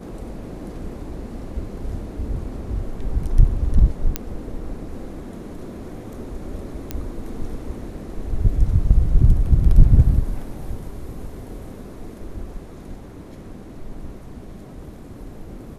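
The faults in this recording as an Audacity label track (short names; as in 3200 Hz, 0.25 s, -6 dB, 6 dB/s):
4.160000	4.160000	pop -5 dBFS
6.910000	6.910000	pop -11 dBFS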